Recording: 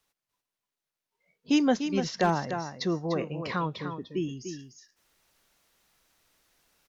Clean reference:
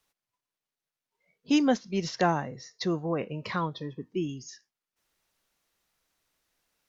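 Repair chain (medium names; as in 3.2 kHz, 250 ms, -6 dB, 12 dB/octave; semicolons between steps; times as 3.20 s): clip repair -13.5 dBFS; inverse comb 296 ms -8.5 dB; trim 0 dB, from 4.59 s -7.5 dB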